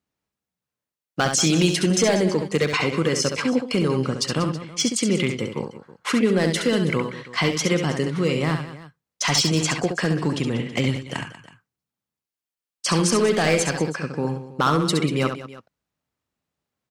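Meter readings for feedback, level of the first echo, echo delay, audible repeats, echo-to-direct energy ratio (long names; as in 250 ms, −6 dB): repeats not evenly spaced, −6.5 dB, 68 ms, 3, −5.5 dB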